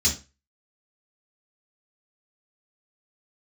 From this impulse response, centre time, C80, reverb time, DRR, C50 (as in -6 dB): 18 ms, 17.0 dB, 0.30 s, -3.0 dB, 9.5 dB